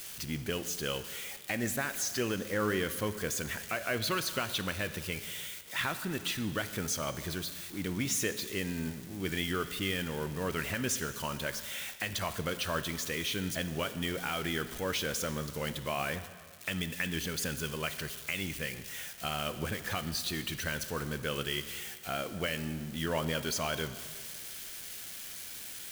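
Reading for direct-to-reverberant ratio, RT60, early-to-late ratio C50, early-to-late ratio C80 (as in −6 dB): 10.5 dB, 1.8 s, 12.0 dB, 13.5 dB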